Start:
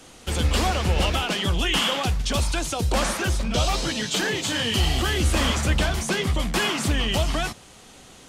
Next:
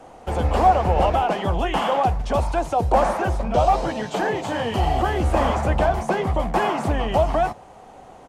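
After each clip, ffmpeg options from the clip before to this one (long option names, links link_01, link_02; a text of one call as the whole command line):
ffmpeg -i in.wav -af "firequalizer=gain_entry='entry(260,0);entry(750,13);entry(1300,0);entry(3500,-13)':delay=0.05:min_phase=1" out.wav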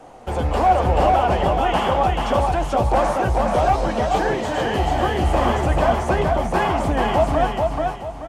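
ffmpeg -i in.wav -af "acontrast=73,flanger=delay=6.4:depth=2.3:regen=73:speed=1.9:shape=triangular,aecho=1:1:433|866|1299|1732:0.708|0.234|0.0771|0.0254,volume=-1.5dB" out.wav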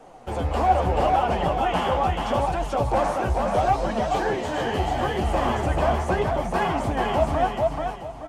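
ffmpeg -i in.wav -af "flanger=delay=4.1:depth=10:regen=45:speed=0.76:shape=triangular" out.wav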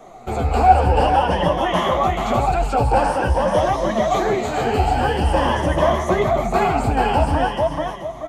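ffmpeg -i in.wav -af "afftfilt=real='re*pow(10,10/40*sin(2*PI*(1.2*log(max(b,1)*sr/1024/100)/log(2)-(0.48)*(pts-256)/sr)))':imag='im*pow(10,10/40*sin(2*PI*(1.2*log(max(b,1)*sr/1024/100)/log(2)-(0.48)*(pts-256)/sr)))':win_size=1024:overlap=0.75,volume=4dB" out.wav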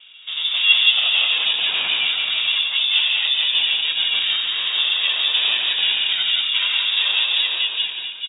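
ffmpeg -i in.wav -filter_complex "[0:a]aeval=exprs='val(0)*sin(2*PI*290*n/s)':channel_layout=same,asplit=2[link_01][link_02];[link_02]aecho=0:1:87.46|177.8:0.316|0.708[link_03];[link_01][link_03]amix=inputs=2:normalize=0,lowpass=frequency=3200:width_type=q:width=0.5098,lowpass=frequency=3200:width_type=q:width=0.6013,lowpass=frequency=3200:width_type=q:width=0.9,lowpass=frequency=3200:width_type=q:width=2.563,afreqshift=-3800,volume=-1dB" out.wav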